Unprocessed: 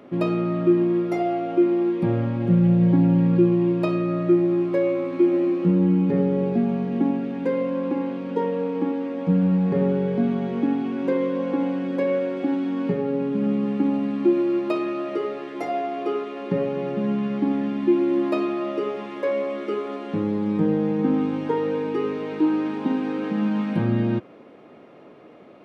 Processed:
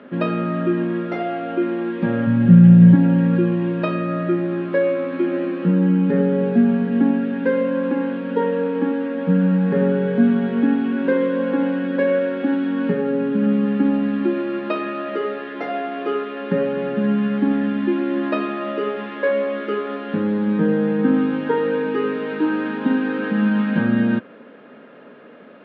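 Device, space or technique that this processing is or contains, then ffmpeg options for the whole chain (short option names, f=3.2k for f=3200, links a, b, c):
kitchen radio: -filter_complex "[0:a]asplit=3[a][b][c];[a]afade=t=out:st=2.26:d=0.02[d];[b]asubboost=boost=7.5:cutoff=170,afade=t=in:st=2.26:d=0.02,afade=t=out:st=2.94:d=0.02[e];[c]afade=t=in:st=2.94:d=0.02[f];[d][e][f]amix=inputs=3:normalize=0,highpass=220,equalizer=f=230:t=q:w=4:g=5,equalizer=f=340:t=q:w=4:g=-10,equalizer=f=740:t=q:w=4:g=-8,equalizer=f=1.1k:t=q:w=4:g=-4,equalizer=f=1.6k:t=q:w=4:g=9,equalizer=f=2.2k:t=q:w=4:g=-5,lowpass=f=3.6k:w=0.5412,lowpass=f=3.6k:w=1.3066,volume=6.5dB"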